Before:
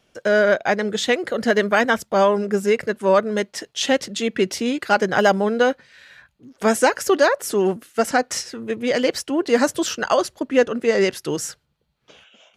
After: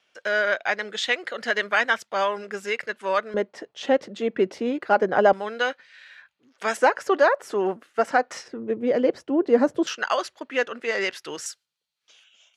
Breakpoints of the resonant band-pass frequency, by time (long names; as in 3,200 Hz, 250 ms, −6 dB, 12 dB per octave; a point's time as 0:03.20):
resonant band-pass, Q 0.71
2,300 Hz
from 0:03.34 590 Hz
from 0:05.33 2,300 Hz
from 0:06.77 960 Hz
from 0:08.48 390 Hz
from 0:09.87 2,000 Hz
from 0:11.46 6,700 Hz